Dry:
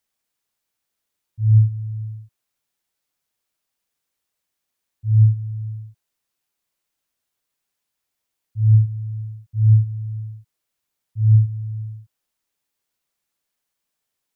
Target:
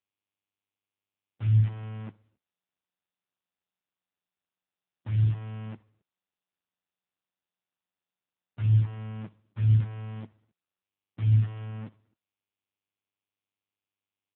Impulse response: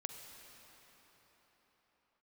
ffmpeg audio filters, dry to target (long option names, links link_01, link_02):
-filter_complex "[0:a]agate=range=-26dB:threshold=-29dB:ratio=16:detection=peak,dynaudnorm=framelen=120:gausssize=7:maxgain=3dB,asplit=3[link_01][link_02][link_03];[link_01]afade=type=out:start_time=2.11:duration=0.02[link_04];[link_02]flanger=delay=7.2:depth=7:regen=-31:speed=1:shape=triangular,afade=type=in:start_time=2.11:duration=0.02,afade=type=out:start_time=5.27:duration=0.02[link_05];[link_03]afade=type=in:start_time=5.27:duration=0.02[link_06];[link_04][link_05][link_06]amix=inputs=3:normalize=0,acrusher=bits=6:dc=4:mix=0:aa=0.000001,aecho=1:1:66|132|198|264:0.075|0.0405|0.0219|0.0118,volume=-8.5dB" -ar 8000 -c:a libopencore_amrnb -b:a 5900